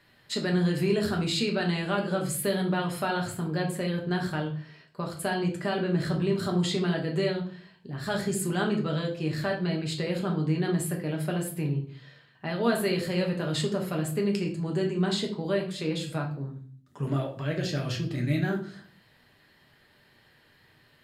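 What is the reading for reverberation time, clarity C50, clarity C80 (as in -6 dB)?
0.45 s, 8.5 dB, 14.0 dB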